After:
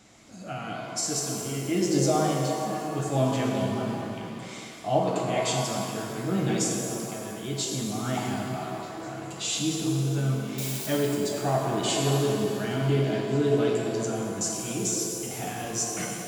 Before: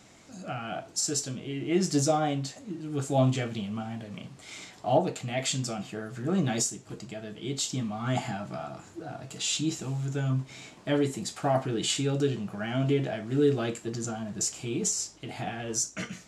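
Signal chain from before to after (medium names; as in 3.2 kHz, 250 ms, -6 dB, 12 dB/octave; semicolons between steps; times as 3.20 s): 10.58–11.03 s: zero-crossing glitches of -26 dBFS; repeats whose band climbs or falls 205 ms, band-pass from 340 Hz, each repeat 0.7 oct, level -3 dB; pitch-shifted reverb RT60 2.2 s, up +7 st, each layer -8 dB, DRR 0.5 dB; trim -1.5 dB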